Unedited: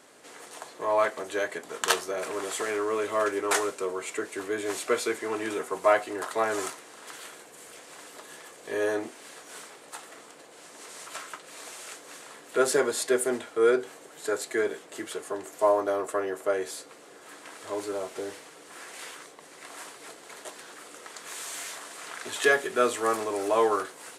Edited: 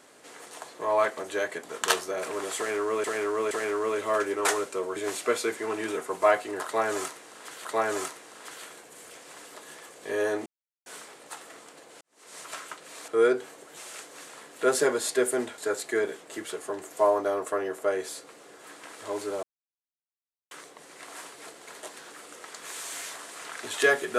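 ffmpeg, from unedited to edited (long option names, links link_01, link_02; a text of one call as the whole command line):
ffmpeg -i in.wav -filter_complex "[0:a]asplit=13[link_01][link_02][link_03][link_04][link_05][link_06][link_07][link_08][link_09][link_10][link_11][link_12][link_13];[link_01]atrim=end=3.042[link_14];[link_02]atrim=start=2.568:end=3.042[link_15];[link_03]atrim=start=2.568:end=4.022[link_16];[link_04]atrim=start=4.578:end=7.272[link_17];[link_05]atrim=start=6.268:end=9.08,asetpts=PTS-STARTPTS,afade=type=out:start_time=2.808:duration=0.004:curve=hsin[link_18];[link_06]atrim=start=9.08:end=9.48,asetpts=PTS-STARTPTS,volume=0[link_19];[link_07]atrim=start=9.48:end=10.63,asetpts=PTS-STARTPTS,afade=type=in:duration=0.004:curve=hsin,afade=type=out:start_time=1.146:duration=0.004:curve=hsin[link_20];[link_08]atrim=start=10.63:end=11.702,asetpts=PTS-STARTPTS,afade=type=in:duration=0.36:curve=qua[link_21];[link_09]atrim=start=13.508:end=14.202[link_22];[link_10]atrim=start=11.698:end=13.512[link_23];[link_11]atrim=start=14.198:end=18.05,asetpts=PTS-STARTPTS,afade=type=out:start_time=3.848:duration=0.004:curve=hsin[link_24];[link_12]atrim=start=18.05:end=19.13,asetpts=PTS-STARTPTS,volume=0[link_25];[link_13]atrim=start=19.13,asetpts=PTS-STARTPTS,afade=type=in:duration=0.004:curve=hsin[link_26];[link_14][link_15]acrossfade=duration=0.004:curve1=hsin:curve2=hsin[link_27];[link_27][link_16]acrossfade=duration=0.004:curve1=hsin:curve2=hsin[link_28];[link_28][link_17]acrossfade=duration=0.004:curve1=hsin:curve2=hsin[link_29];[link_18][link_19][link_20][link_21]concat=n=4:v=0:a=1[link_30];[link_29][link_30]acrossfade=duration=0.004:curve1=hsin:curve2=hsin[link_31];[link_31][link_22]acrossfade=duration=0.004:curve1=hsin:curve2=hsin[link_32];[link_32][link_23]acrossfade=duration=0.004:curve1=hsin:curve2=hsin[link_33];[link_24][link_25][link_26]concat=n=3:v=0:a=1[link_34];[link_33][link_34]acrossfade=duration=0.004:curve1=hsin:curve2=hsin" out.wav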